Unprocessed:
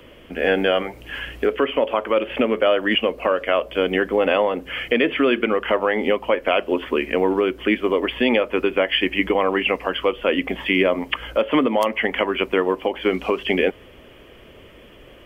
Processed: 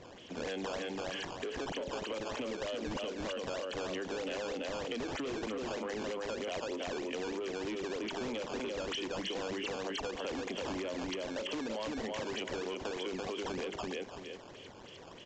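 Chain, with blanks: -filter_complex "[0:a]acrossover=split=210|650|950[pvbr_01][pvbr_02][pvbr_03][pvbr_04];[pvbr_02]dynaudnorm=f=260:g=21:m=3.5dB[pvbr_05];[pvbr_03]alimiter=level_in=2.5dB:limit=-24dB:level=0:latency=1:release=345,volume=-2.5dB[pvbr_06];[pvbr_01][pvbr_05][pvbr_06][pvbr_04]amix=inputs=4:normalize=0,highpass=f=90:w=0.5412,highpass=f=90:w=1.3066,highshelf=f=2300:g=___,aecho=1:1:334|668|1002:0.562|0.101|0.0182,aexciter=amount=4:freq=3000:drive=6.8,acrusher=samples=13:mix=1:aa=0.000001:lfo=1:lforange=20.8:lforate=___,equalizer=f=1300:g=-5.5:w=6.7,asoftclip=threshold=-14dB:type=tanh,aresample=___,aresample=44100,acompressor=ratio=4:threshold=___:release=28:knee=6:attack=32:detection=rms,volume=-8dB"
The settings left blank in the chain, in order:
-2.5, 3.2, 16000, -33dB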